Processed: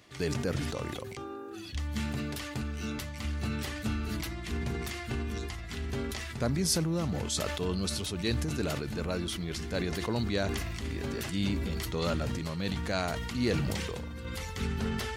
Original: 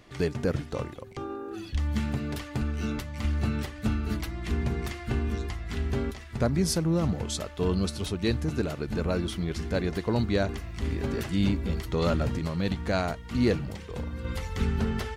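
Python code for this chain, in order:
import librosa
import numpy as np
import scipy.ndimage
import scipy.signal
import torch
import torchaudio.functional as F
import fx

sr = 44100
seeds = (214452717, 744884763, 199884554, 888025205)

y = scipy.signal.sosfilt(scipy.signal.butter(2, 55.0, 'highpass', fs=sr, output='sos'), x)
y = fx.high_shelf(y, sr, hz=2200.0, db=8.0)
y = fx.sustainer(y, sr, db_per_s=23.0)
y = F.gain(torch.from_numpy(y), -6.0).numpy()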